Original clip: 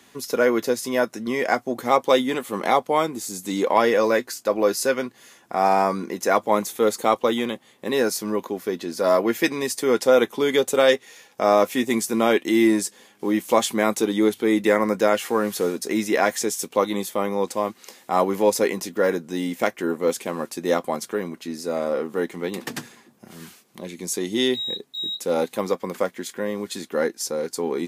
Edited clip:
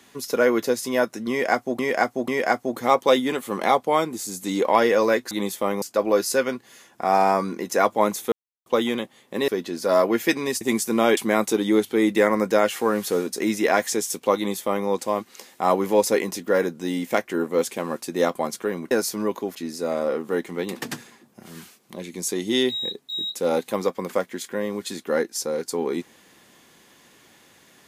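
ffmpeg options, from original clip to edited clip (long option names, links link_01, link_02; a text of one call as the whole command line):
ffmpeg -i in.wav -filter_complex "[0:a]asplit=12[link_01][link_02][link_03][link_04][link_05][link_06][link_07][link_08][link_09][link_10][link_11][link_12];[link_01]atrim=end=1.792[link_13];[link_02]atrim=start=1.298:end=1.792[link_14];[link_03]atrim=start=1.298:end=4.332[link_15];[link_04]atrim=start=16.848:end=17.362[link_16];[link_05]atrim=start=4.328:end=6.83,asetpts=PTS-STARTPTS,afade=type=out:start_time=2.498:duration=0.004:curve=hsin[link_17];[link_06]atrim=start=6.83:end=7.17,asetpts=PTS-STARTPTS,volume=0[link_18];[link_07]atrim=start=7.17:end=7.992,asetpts=PTS-STARTPTS,afade=type=in:duration=0.004:curve=hsin[link_19];[link_08]atrim=start=8.628:end=9.762[link_20];[link_09]atrim=start=11.828:end=12.392[link_21];[link_10]atrim=start=13.658:end=21.402[link_22];[link_11]atrim=start=7.988:end=8.632[link_23];[link_12]atrim=start=21.398[link_24];[link_13][link_14]acrossfade=duration=0.004:curve1=hsin:curve2=hsin[link_25];[link_25][link_15]acrossfade=duration=0.004:curve1=hsin:curve2=hsin[link_26];[link_26][link_16]acrossfade=duration=0.004:curve1=hsin:curve2=hsin[link_27];[link_17][link_18][link_19]concat=n=3:v=0:a=1[link_28];[link_27][link_28]acrossfade=duration=0.004:curve1=hsin:curve2=hsin[link_29];[link_29][link_20]acrossfade=duration=0.004:curve1=hsin:curve2=hsin[link_30];[link_30][link_21]acrossfade=duration=0.004:curve1=hsin:curve2=hsin[link_31];[link_31][link_22]acrossfade=duration=0.004:curve1=hsin:curve2=hsin[link_32];[link_32][link_23]acrossfade=duration=0.004:curve1=hsin:curve2=hsin[link_33];[link_33][link_24]acrossfade=duration=0.004:curve1=hsin:curve2=hsin" out.wav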